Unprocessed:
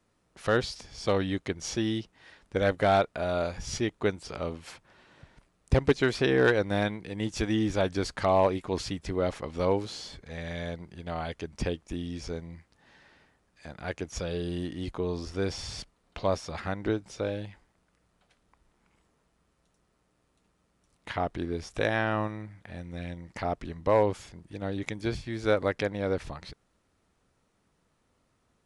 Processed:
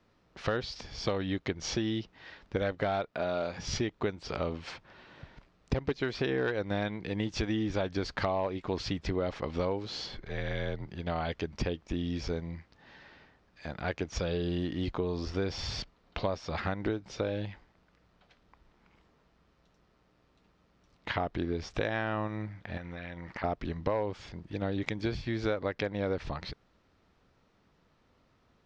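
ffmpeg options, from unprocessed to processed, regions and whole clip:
ffmpeg -i in.wav -filter_complex "[0:a]asettb=1/sr,asplit=3[link_01][link_02][link_03];[link_01]atrim=end=3.114[link_04];[link_02]atrim=start=3.11:end=3.68,asetpts=PTS-STARTPTS,afade=type=in:duration=0.004:curve=qsin,afade=type=out:start_time=0.566:duration=0.004:curve=qsin,highpass=130,asoftclip=type=hard:threshold=-19.5dB[link_05];[link_03]atrim=start=3.676[link_06];[link_04][link_05]acrossfade=duration=0.004:curve1=hsin:curve2=qsin[link_07];[link_07][link_06]acrossfade=duration=0.004:curve1=qsin:curve2=hsin,asettb=1/sr,asplit=3[link_08][link_09][link_10];[link_08]atrim=end=10.064[link_11];[link_09]atrim=start=10.06:end=10.88,asetpts=PTS-STARTPTS,afade=type=in:duration=0.004:curve=qsin,afade=type=out:start_time=0.816:duration=0.004:curve=qsin,highshelf=frequency=6300:gain=-8.5,afreqshift=-52[link_12];[link_10]atrim=start=10.876[link_13];[link_11][link_12]acrossfade=duration=0.004:curve1=hsin:curve2=qsin[link_14];[link_14][link_13]acrossfade=duration=0.004:curve1=qsin:curve2=hsin,asettb=1/sr,asplit=3[link_15][link_16][link_17];[link_15]atrim=end=22.774[link_18];[link_16]atrim=start=22.77:end=23.44,asetpts=PTS-STARTPTS,afade=type=in:duration=0.004:curve=qsin,afade=type=out:start_time=0.666:duration=0.004:curve=qsin,equalizer=frequency=1400:width_type=o:width=2.5:gain=13,acompressor=threshold=-42dB:ratio=6:attack=3.2:release=140:knee=1:detection=peak[link_19];[link_17]atrim=start=23.436[link_20];[link_18][link_19]acrossfade=duration=0.004:curve1=hsin:curve2=qsin[link_21];[link_21][link_20]acrossfade=duration=0.004:curve1=qsin:curve2=hsin,lowpass=frequency=5300:width=0.5412,lowpass=frequency=5300:width=1.3066,acompressor=threshold=-32dB:ratio=6,volume=4dB" out.wav

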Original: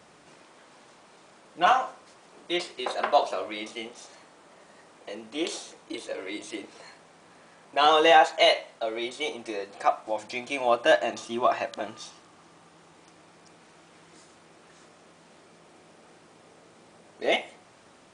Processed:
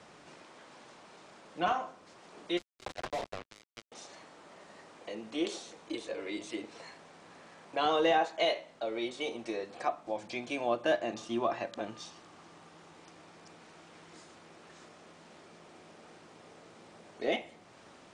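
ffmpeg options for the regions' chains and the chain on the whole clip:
ffmpeg -i in.wav -filter_complex "[0:a]asettb=1/sr,asplit=3[link_01][link_02][link_03];[link_01]atrim=end=2.574[link_04];[link_02]atrim=start=2.57:end=3.92,asetpts=PTS-STARTPTS,afade=type=in:duration=0.004:curve=qsin,afade=type=out:start_time=1.346:duration=0.004:curve=qsin,bandreject=frequency=2800:width=7.7,acrusher=bits=3:mix=0:aa=0.5,asoftclip=type=hard:threshold=-25dB[link_05];[link_03]atrim=start=3.916[link_06];[link_04][link_05]acrossfade=duration=0.004:curve1=hsin:curve2=qsin[link_07];[link_07][link_06]acrossfade=duration=0.004:curve1=qsin:curve2=hsin,acrossover=split=390[link_08][link_09];[link_09]acompressor=threshold=-48dB:ratio=1.5[link_10];[link_08][link_10]amix=inputs=2:normalize=0,lowpass=7600" out.wav

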